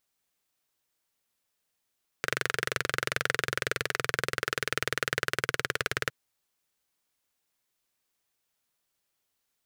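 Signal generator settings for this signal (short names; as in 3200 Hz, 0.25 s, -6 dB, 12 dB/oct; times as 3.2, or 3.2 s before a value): single-cylinder engine model, changing speed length 3.86 s, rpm 2800, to 2200, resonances 130/450/1500 Hz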